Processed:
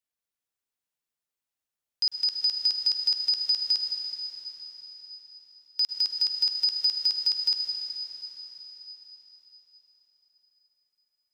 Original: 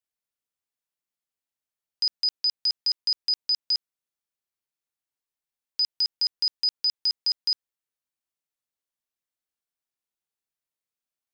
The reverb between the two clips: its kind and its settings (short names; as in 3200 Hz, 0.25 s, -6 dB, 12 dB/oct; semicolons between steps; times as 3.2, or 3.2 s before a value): plate-style reverb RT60 4.7 s, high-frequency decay 0.95×, pre-delay 90 ms, DRR 2 dB; gain -1 dB